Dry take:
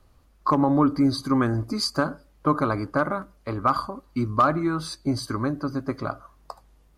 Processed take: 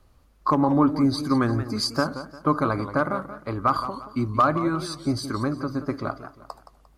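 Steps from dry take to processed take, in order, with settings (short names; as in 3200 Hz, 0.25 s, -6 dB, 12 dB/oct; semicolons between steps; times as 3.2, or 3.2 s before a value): warbling echo 0.175 s, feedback 35%, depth 152 cents, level -12 dB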